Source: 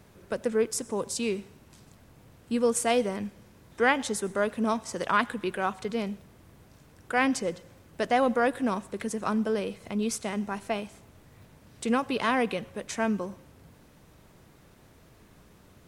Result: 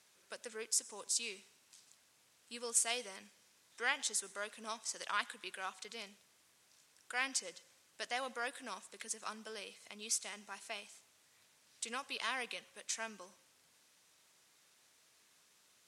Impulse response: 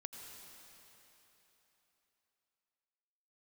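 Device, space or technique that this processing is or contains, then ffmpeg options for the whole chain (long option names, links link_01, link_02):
piezo pickup straight into a mixer: -af "lowpass=7400,aderivative,volume=2.5dB"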